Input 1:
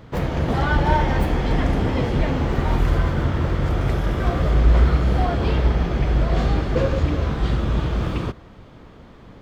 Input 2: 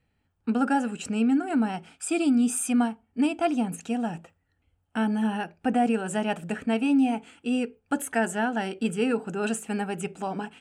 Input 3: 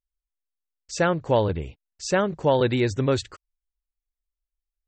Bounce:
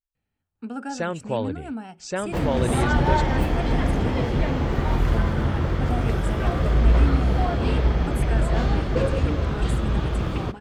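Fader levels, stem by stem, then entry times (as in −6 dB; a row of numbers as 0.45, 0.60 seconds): −2.0, −8.5, −6.0 decibels; 2.20, 0.15, 0.00 seconds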